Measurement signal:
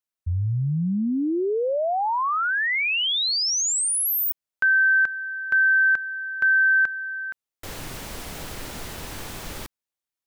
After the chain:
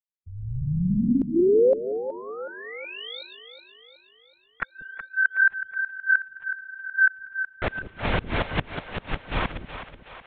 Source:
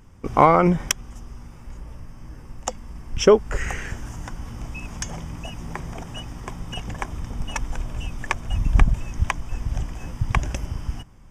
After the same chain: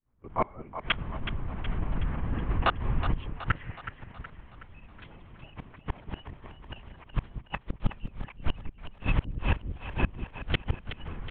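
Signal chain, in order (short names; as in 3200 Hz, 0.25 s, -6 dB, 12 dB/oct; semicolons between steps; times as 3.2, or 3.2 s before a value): opening faded in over 3.62 s; air absorption 54 m; AGC gain up to 7.5 dB; low-pass opened by the level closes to 1600 Hz, open at -11 dBFS; flipped gate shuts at -10 dBFS, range -38 dB; LPC vocoder at 8 kHz whisper; flipped gate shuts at -19 dBFS, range -30 dB; high shelf 2100 Hz +8 dB; on a send: split-band echo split 440 Hz, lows 0.189 s, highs 0.371 s, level -10 dB; on the sum: gain +5.5 dB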